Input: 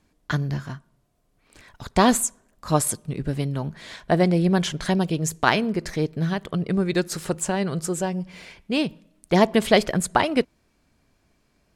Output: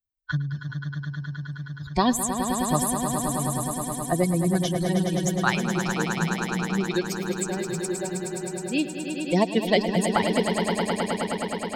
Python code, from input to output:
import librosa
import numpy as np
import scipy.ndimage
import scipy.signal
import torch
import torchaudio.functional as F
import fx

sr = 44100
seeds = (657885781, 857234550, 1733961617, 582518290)

p1 = fx.bin_expand(x, sr, power=2.0)
p2 = fx.high_shelf(p1, sr, hz=11000.0, db=5.0)
p3 = p2 + fx.echo_swell(p2, sr, ms=105, loudest=5, wet_db=-10.0, dry=0)
y = fx.band_squash(p3, sr, depth_pct=40)